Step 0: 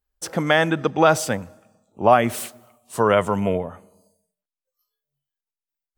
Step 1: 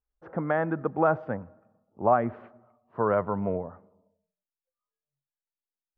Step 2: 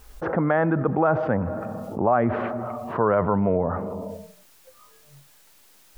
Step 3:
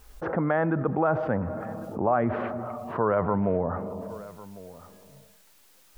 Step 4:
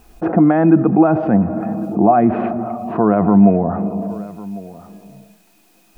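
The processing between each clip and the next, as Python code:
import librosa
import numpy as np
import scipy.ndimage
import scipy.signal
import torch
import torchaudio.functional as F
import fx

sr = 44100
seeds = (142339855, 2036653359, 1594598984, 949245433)

y1 = scipy.signal.sosfilt(scipy.signal.butter(4, 1500.0, 'lowpass', fs=sr, output='sos'), x)
y1 = y1 * librosa.db_to_amplitude(-7.0)
y2 = fx.env_flatten(y1, sr, amount_pct=70)
y3 = y2 + 10.0 ** (-19.0 / 20.0) * np.pad(y2, (int(1101 * sr / 1000.0), 0))[:len(y2)]
y3 = y3 * librosa.db_to_amplitude(-3.5)
y4 = fx.small_body(y3, sr, hz=(210.0, 310.0, 690.0, 2500.0), ring_ms=60, db=17)
y4 = y4 * librosa.db_to_amplitude(2.0)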